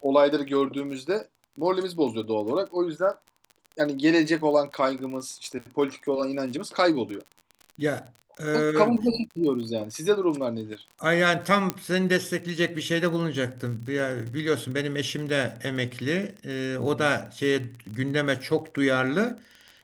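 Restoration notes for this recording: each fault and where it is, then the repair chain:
crackle 39/s -34 dBFS
11.7 pop -10 dBFS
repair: de-click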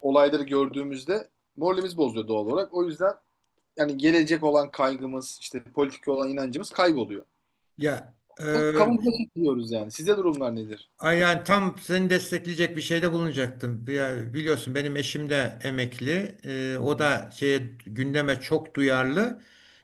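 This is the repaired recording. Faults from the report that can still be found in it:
none

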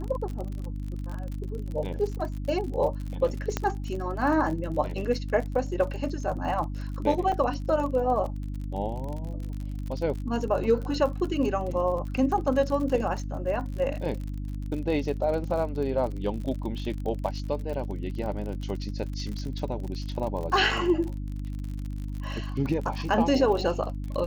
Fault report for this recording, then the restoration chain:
crackle 46/s -33 dBFS
hum 50 Hz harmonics 6 -33 dBFS
3.57 pop -12 dBFS
7.32–7.33 gap 5.5 ms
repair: de-click; de-hum 50 Hz, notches 6; interpolate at 7.32, 5.5 ms

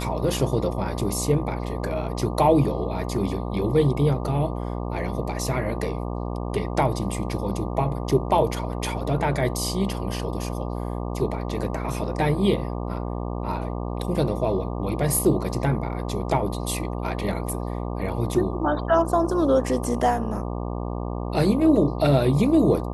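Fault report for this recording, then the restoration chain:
buzz 60 Hz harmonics 20 -29 dBFS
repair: de-hum 60 Hz, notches 20

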